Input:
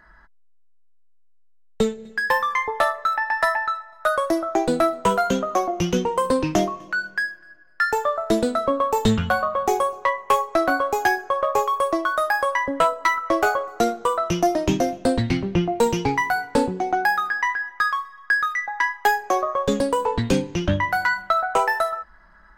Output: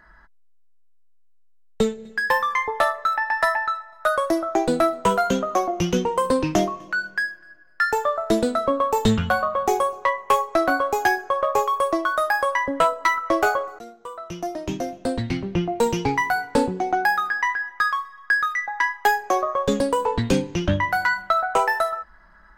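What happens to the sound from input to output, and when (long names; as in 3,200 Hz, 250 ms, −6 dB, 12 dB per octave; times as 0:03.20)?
0:13.79–0:16.22: fade in, from −22 dB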